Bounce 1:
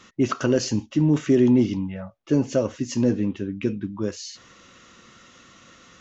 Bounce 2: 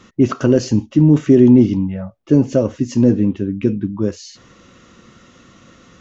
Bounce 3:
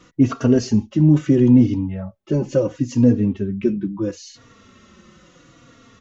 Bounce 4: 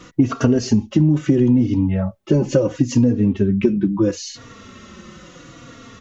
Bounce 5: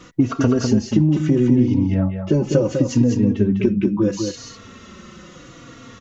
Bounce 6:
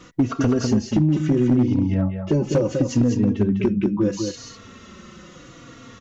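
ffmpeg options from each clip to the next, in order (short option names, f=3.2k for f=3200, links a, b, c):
-af "tiltshelf=f=700:g=5,volume=4.5dB"
-filter_complex "[0:a]asplit=2[a][b];[b]adelay=3.6,afreqshift=-0.74[c];[a][c]amix=inputs=2:normalize=1"
-af "acompressor=threshold=-20dB:ratio=10,volume=8.5dB"
-af "aecho=1:1:201:0.531,volume=-1.5dB"
-af "volume=9.5dB,asoftclip=hard,volume=-9.5dB,volume=-2dB"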